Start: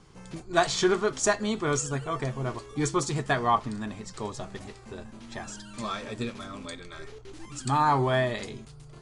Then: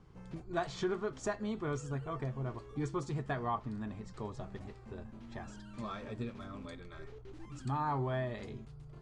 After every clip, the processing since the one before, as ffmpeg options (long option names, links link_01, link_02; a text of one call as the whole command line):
ffmpeg -i in.wav -af "lowpass=frequency=1700:poles=1,equalizer=frequency=64:width_type=o:width=2.7:gain=6,acompressor=threshold=-32dB:ratio=1.5,volume=-6.5dB" out.wav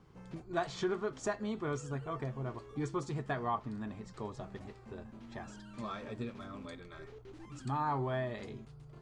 ffmpeg -i in.wav -af "lowshelf=frequency=81:gain=-9.5,volume=1dB" out.wav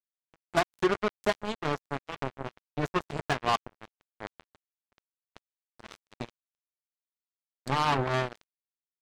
ffmpeg -i in.wav -af "acrusher=bits=4:mix=0:aa=0.5,volume=7.5dB" out.wav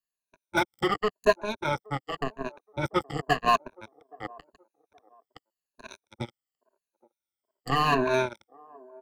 ffmpeg -i in.wav -filter_complex "[0:a]afftfilt=real='re*pow(10,21/40*sin(2*PI*(1.5*log(max(b,1)*sr/1024/100)/log(2)-(-0.9)*(pts-256)/sr)))':imag='im*pow(10,21/40*sin(2*PI*(1.5*log(max(b,1)*sr/1024/100)/log(2)-(-0.9)*(pts-256)/sr)))':win_size=1024:overlap=0.75,acrossover=split=340|920|2900[link_01][link_02][link_03][link_04];[link_02]aecho=1:1:822|1644:0.112|0.0314[link_05];[link_04]volume=33dB,asoftclip=hard,volume=-33dB[link_06];[link_01][link_05][link_03][link_06]amix=inputs=4:normalize=0,volume=-1.5dB" out.wav